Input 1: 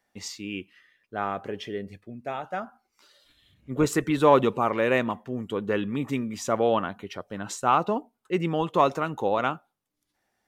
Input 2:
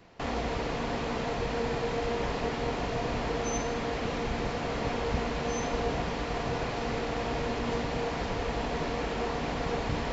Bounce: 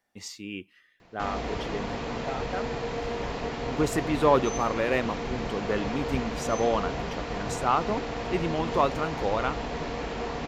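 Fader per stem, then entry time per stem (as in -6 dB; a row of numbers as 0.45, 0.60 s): -3.0, -1.0 dB; 0.00, 1.00 s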